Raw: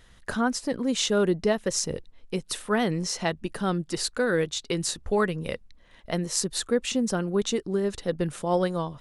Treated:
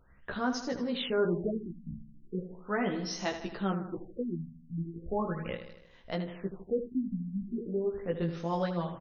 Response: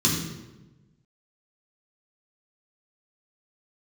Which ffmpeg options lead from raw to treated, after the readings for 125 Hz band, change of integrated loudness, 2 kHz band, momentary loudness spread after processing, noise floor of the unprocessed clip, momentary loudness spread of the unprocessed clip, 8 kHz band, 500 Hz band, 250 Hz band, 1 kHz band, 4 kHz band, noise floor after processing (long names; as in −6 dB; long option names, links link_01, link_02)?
−5.0 dB, −7.5 dB, −8.5 dB, 10 LU, −55 dBFS, 8 LU, −20.0 dB, −7.0 dB, −6.0 dB, −6.0 dB, −11.5 dB, −57 dBFS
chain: -af "flanger=delay=15:depth=3:speed=0.3,aecho=1:1:78|156|234|312|390|468|546:0.316|0.18|0.103|0.0586|0.0334|0.019|0.0108,afftfilt=real='re*lt(b*sr/1024,260*pow(7000/260,0.5+0.5*sin(2*PI*0.38*pts/sr)))':imag='im*lt(b*sr/1024,260*pow(7000/260,0.5+0.5*sin(2*PI*0.38*pts/sr)))':win_size=1024:overlap=0.75,volume=-3dB"